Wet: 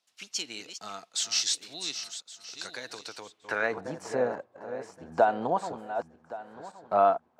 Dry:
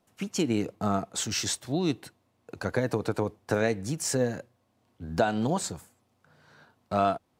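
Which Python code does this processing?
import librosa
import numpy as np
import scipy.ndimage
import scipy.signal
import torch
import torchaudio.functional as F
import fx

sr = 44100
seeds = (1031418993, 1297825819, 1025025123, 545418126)

y = fx.reverse_delay_fb(x, sr, ms=560, feedback_pct=44, wet_db=-10)
y = fx.filter_sweep_bandpass(y, sr, from_hz=4500.0, to_hz=840.0, start_s=3.23, end_s=3.81, q=1.4)
y = y * 10.0 ** (5.5 / 20.0)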